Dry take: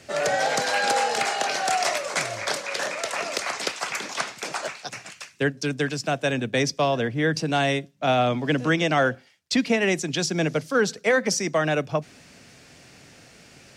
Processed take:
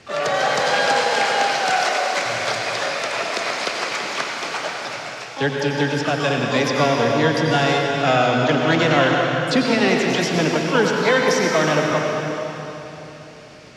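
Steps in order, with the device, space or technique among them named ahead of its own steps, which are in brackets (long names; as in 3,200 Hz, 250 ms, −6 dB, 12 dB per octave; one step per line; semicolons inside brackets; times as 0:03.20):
shimmer-style reverb (pitch-shifted copies added +12 semitones −8 dB; convolution reverb RT60 3.5 s, pre-delay 83 ms, DRR −0.5 dB)
low-pass filter 5,400 Hz 12 dB per octave
0:01.85–0:02.26: elliptic high-pass filter 180 Hz
level +2 dB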